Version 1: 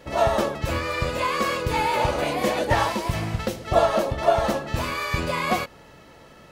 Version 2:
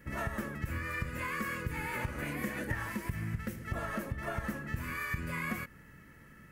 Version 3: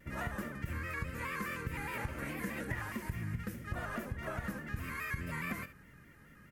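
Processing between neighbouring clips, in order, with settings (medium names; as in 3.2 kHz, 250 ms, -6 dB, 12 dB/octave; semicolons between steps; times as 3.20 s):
FFT filter 220 Hz 0 dB, 730 Hz -19 dB, 1.8 kHz +2 dB, 3.8 kHz -18 dB, 13 kHz +2 dB; compression 5:1, threshold -29 dBFS, peak gain reduction 10.5 dB; trim -3 dB
delay 72 ms -13 dB; vibrato with a chosen wave square 4.8 Hz, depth 100 cents; trim -3 dB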